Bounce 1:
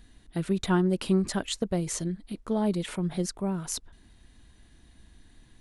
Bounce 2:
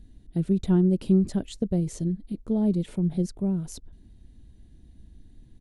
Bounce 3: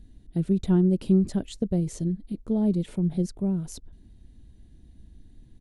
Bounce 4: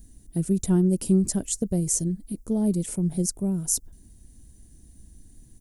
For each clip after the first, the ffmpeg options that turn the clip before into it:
ffmpeg -i in.wav -af "firequalizer=gain_entry='entry(150,0);entry(1100,-20);entry(3500,-15)':delay=0.05:min_phase=1,volume=5.5dB" out.wav
ffmpeg -i in.wav -af anull out.wav
ffmpeg -i in.wav -af "aexciter=amount=11.8:drive=2.3:freq=5500" out.wav

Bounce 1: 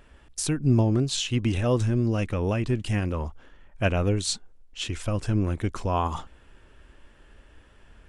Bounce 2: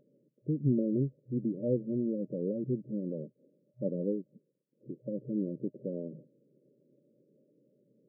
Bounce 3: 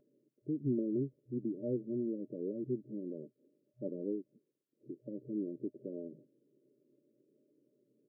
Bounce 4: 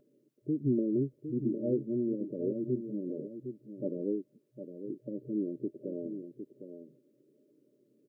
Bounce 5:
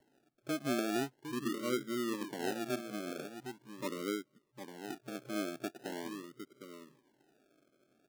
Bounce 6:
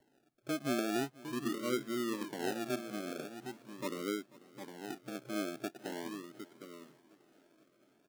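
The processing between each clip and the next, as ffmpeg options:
ffmpeg -i in.wav -af "afftfilt=real='re*between(b*sr/4096,120,610)':imag='im*between(b*sr/4096,120,610)':win_size=4096:overlap=0.75,volume=-5dB" out.wav
ffmpeg -i in.wav -af "aecho=1:1:2.9:0.59,volume=-5.5dB" out.wav
ffmpeg -i in.wav -filter_complex "[0:a]asplit=2[link_01][link_02];[link_02]adelay=758,volume=-9dB,highshelf=frequency=4000:gain=-17.1[link_03];[link_01][link_03]amix=inputs=2:normalize=0,volume=4.5dB" out.wav
ffmpeg -i in.wav -filter_complex "[0:a]acrossover=split=180|290[link_01][link_02][link_03];[link_01]acompressor=threshold=-53dB:ratio=6[link_04];[link_04][link_02][link_03]amix=inputs=3:normalize=0,acrusher=samples=36:mix=1:aa=0.000001:lfo=1:lforange=21.6:lforate=0.42,volume=-3.5dB" out.wav
ffmpeg -i in.wav -af "aecho=1:1:491|982|1473|1964|2455:0.0841|0.0505|0.0303|0.0182|0.0109" out.wav

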